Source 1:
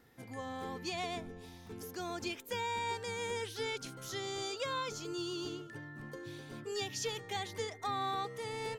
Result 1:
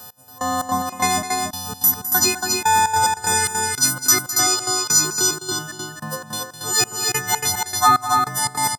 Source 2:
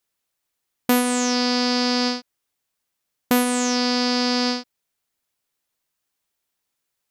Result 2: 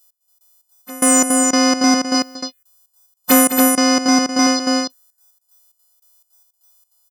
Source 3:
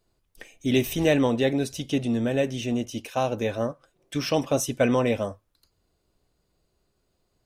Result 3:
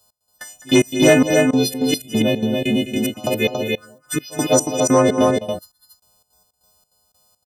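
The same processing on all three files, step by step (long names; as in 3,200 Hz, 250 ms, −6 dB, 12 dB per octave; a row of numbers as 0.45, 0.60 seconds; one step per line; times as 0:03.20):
every partial snapped to a pitch grid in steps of 3 semitones
phaser swept by the level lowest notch 340 Hz, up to 3,900 Hz, full sweep at −16.5 dBFS
gate pattern "x...xx.x..x" 147 BPM −24 dB
loudspeakers that aren't time-aligned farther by 71 metres −12 dB, 96 metres −4 dB
soft clipping −13.5 dBFS
high-pass filter 150 Hz 6 dB per octave
normalise the peak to −2 dBFS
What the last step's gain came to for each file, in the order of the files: +24.0, +10.0, +11.0 decibels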